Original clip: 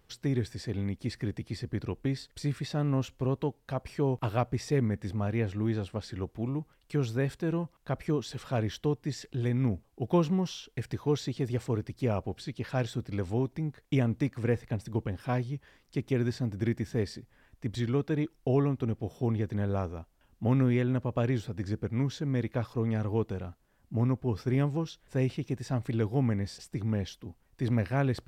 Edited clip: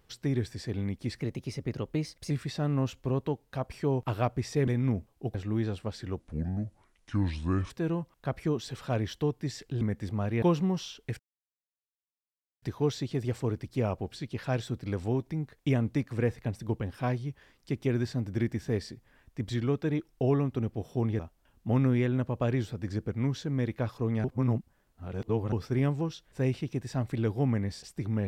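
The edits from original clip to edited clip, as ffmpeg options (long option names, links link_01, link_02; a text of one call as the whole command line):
ffmpeg -i in.wav -filter_complex "[0:a]asplit=13[link_01][link_02][link_03][link_04][link_05][link_06][link_07][link_08][link_09][link_10][link_11][link_12][link_13];[link_01]atrim=end=1.204[link_14];[link_02]atrim=start=1.2:end=2.46,asetpts=PTS-STARTPTS,asetrate=50274,aresample=44100,atrim=end_sample=48742,asetpts=PTS-STARTPTS[link_15];[link_03]atrim=start=2.456:end=4.832[link_16];[link_04]atrim=start=9.438:end=10.112[link_17];[link_05]atrim=start=5.438:end=6.294[link_18];[link_06]atrim=start=6.29:end=7.33,asetpts=PTS-STARTPTS,asetrate=30429,aresample=44100[link_19];[link_07]atrim=start=7.326:end=9.442[link_20];[link_08]atrim=start=4.828:end=5.442[link_21];[link_09]atrim=start=10.108:end=10.88,asetpts=PTS-STARTPTS,afade=type=out:start_time=0.768:duration=0.004:curve=hsin,apad=pad_dur=1.43[link_22];[link_10]atrim=start=10.88:end=19.452,asetpts=PTS-STARTPTS,afade=type=in:duration=0.004:curve=hsin[link_23];[link_11]atrim=start=19.948:end=23.002[link_24];[link_12]atrim=start=22.998:end=24.282,asetpts=PTS-STARTPTS,areverse[link_25];[link_13]atrim=start=24.278[link_26];[link_14][link_15]acrossfade=duration=0.004:curve1=hsin:curve2=hsin[link_27];[link_27][link_16]acrossfade=duration=0.004:curve1=hsin:curve2=hsin[link_28];[link_28][link_17]acrossfade=duration=0.004:curve1=hsin:curve2=hsin[link_29];[link_29][link_18]acrossfade=duration=0.004:curve1=hsin:curve2=hsin[link_30];[link_30][link_19]acrossfade=duration=0.004:curve1=hsin:curve2=hsin[link_31];[link_31][link_20]acrossfade=duration=0.004:curve1=hsin:curve2=hsin[link_32];[link_32][link_21]acrossfade=duration=0.004:curve1=hsin:curve2=hsin[link_33];[link_22][link_23]concat=n=2:v=0:a=1[link_34];[link_33][link_34]acrossfade=duration=0.004:curve1=hsin:curve2=hsin[link_35];[link_35][link_24]acrossfade=duration=0.004:curve1=hsin:curve2=hsin[link_36];[link_36][link_25]acrossfade=duration=0.004:curve1=hsin:curve2=hsin[link_37];[link_37][link_26]acrossfade=duration=0.004:curve1=hsin:curve2=hsin" out.wav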